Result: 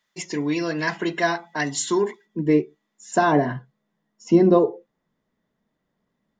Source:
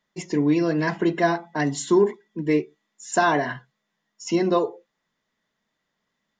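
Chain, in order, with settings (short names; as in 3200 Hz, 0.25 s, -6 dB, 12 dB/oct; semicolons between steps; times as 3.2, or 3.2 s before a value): tilt shelf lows -5.5 dB, about 940 Hz, from 2.25 s lows +4 dB, from 3.31 s lows +8.5 dB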